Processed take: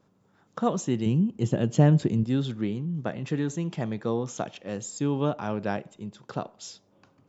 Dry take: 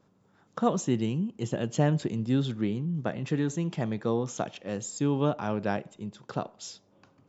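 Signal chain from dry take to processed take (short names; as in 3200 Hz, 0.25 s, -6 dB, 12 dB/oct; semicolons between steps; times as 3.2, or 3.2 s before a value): 1.06–2.24 low shelf 390 Hz +8 dB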